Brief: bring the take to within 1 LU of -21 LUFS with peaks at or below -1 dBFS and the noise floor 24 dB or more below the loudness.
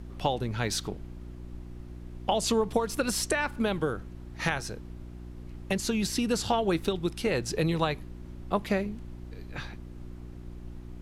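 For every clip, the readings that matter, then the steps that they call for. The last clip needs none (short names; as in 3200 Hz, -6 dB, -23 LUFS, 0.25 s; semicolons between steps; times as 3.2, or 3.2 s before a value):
hum 60 Hz; harmonics up to 360 Hz; hum level -40 dBFS; noise floor -43 dBFS; noise floor target -54 dBFS; loudness -29.5 LUFS; peak -12.5 dBFS; loudness target -21.0 LUFS
-> de-hum 60 Hz, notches 6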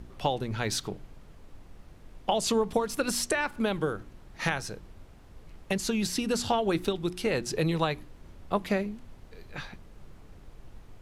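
hum none; noise floor -52 dBFS; noise floor target -54 dBFS
-> noise print and reduce 6 dB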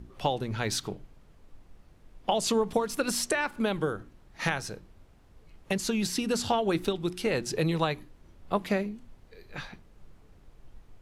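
noise floor -58 dBFS; loudness -30.0 LUFS; peak -12.5 dBFS; loudness target -21.0 LUFS
-> gain +9 dB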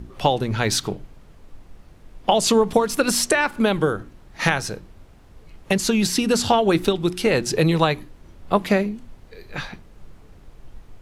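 loudness -21.0 LUFS; peak -3.5 dBFS; noise floor -49 dBFS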